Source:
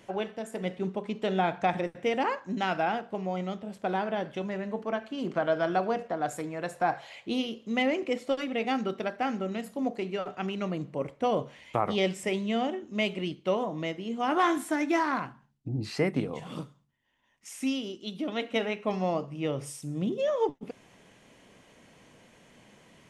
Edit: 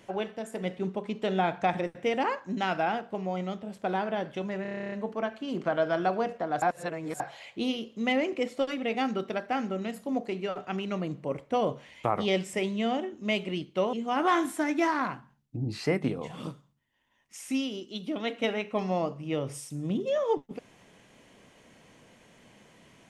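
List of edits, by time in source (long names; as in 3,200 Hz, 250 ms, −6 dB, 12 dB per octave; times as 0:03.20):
0:04.62: stutter 0.03 s, 11 plays
0:06.32–0:06.90: reverse
0:13.63–0:14.05: remove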